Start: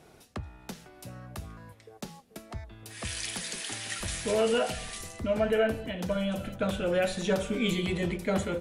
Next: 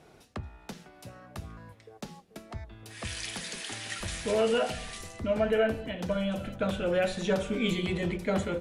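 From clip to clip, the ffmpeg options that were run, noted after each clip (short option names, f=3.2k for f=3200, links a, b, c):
-af "highshelf=f=8.9k:g=-9.5,bandreject=f=61.45:t=h:w=4,bandreject=f=122.9:t=h:w=4,bandreject=f=184.35:t=h:w=4,bandreject=f=245.8:t=h:w=4,bandreject=f=307.25:t=h:w=4,bandreject=f=368.7:t=h:w=4"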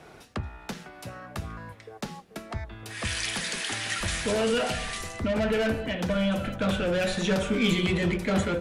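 -filter_complex "[0:a]equalizer=f=1.5k:t=o:w=1.8:g=5,acrossover=split=280|3300[a][b][c];[b]asoftclip=type=tanh:threshold=-31.5dB[d];[a][d][c]amix=inputs=3:normalize=0,volume=5.5dB"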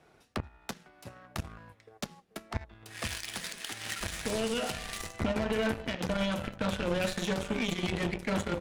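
-af "alimiter=limit=-24dB:level=0:latency=1:release=274,aeval=exprs='0.0631*(cos(1*acos(clip(val(0)/0.0631,-1,1)))-cos(1*PI/2))+0.0178*(cos(3*acos(clip(val(0)/0.0631,-1,1)))-cos(3*PI/2))':c=same,volume=3dB"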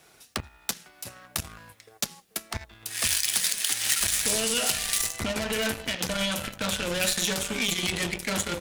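-af "asoftclip=type=tanh:threshold=-20dB,crystalizer=i=7:c=0"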